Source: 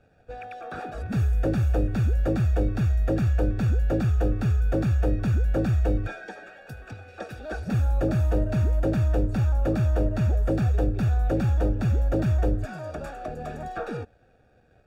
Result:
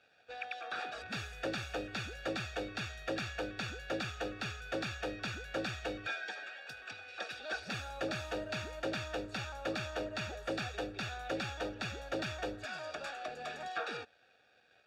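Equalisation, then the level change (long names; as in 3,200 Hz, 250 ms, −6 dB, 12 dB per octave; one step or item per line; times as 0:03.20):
resonant band-pass 3,900 Hz, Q 1.4
high-shelf EQ 4,100 Hz −6.5 dB
+11.0 dB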